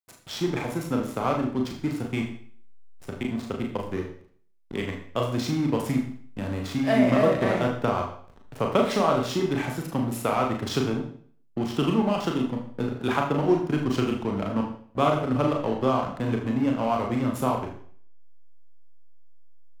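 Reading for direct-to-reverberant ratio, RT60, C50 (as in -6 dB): 0.5 dB, 0.50 s, 6.5 dB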